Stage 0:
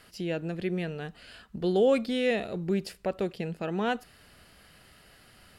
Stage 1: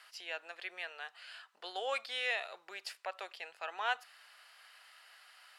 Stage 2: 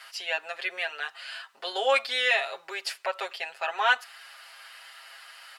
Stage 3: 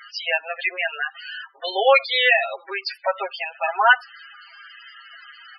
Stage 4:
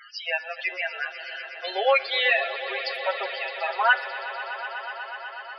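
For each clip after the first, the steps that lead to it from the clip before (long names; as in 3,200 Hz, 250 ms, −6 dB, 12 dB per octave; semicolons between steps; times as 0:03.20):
high-pass filter 830 Hz 24 dB per octave; high-shelf EQ 9,700 Hz −11 dB
comb filter 7.4 ms, depth 98%; level +8.5 dB
spectral peaks only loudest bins 16; level +8.5 dB
tuned comb filter 290 Hz, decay 0.92 s, mix 70%; echo that builds up and dies away 123 ms, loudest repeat 5, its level −16.5 dB; level +5 dB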